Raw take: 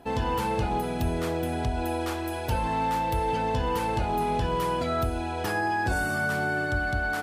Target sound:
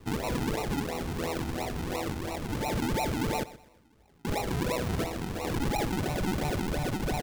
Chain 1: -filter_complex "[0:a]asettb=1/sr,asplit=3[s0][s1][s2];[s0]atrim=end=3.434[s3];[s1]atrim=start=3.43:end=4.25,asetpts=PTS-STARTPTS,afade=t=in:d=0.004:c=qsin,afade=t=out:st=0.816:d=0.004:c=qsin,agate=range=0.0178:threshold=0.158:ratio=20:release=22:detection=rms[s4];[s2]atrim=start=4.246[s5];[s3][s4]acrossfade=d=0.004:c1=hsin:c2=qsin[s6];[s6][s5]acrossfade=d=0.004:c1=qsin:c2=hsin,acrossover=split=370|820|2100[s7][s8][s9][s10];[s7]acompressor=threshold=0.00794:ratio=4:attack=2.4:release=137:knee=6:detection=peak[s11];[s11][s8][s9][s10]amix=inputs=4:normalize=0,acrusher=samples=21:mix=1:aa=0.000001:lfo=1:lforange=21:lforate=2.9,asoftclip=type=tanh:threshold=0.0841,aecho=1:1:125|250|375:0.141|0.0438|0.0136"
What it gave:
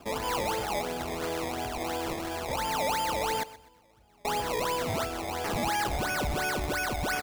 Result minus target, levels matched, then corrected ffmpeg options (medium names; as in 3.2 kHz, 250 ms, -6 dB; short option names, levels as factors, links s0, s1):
decimation with a swept rate: distortion -17 dB
-filter_complex "[0:a]asettb=1/sr,asplit=3[s0][s1][s2];[s0]atrim=end=3.434[s3];[s1]atrim=start=3.43:end=4.25,asetpts=PTS-STARTPTS,afade=t=in:d=0.004:c=qsin,afade=t=out:st=0.816:d=0.004:c=qsin,agate=range=0.0178:threshold=0.158:ratio=20:release=22:detection=rms[s4];[s2]atrim=start=4.246[s5];[s3][s4]acrossfade=d=0.004:c1=hsin:c2=qsin[s6];[s6][s5]acrossfade=d=0.004:c1=qsin:c2=hsin,acrossover=split=370|820|2100[s7][s8][s9][s10];[s7]acompressor=threshold=0.00794:ratio=4:attack=2.4:release=137:knee=6:detection=peak[s11];[s11][s8][s9][s10]amix=inputs=4:normalize=0,acrusher=samples=53:mix=1:aa=0.000001:lfo=1:lforange=53:lforate=2.9,asoftclip=type=tanh:threshold=0.0841,aecho=1:1:125|250|375:0.141|0.0438|0.0136"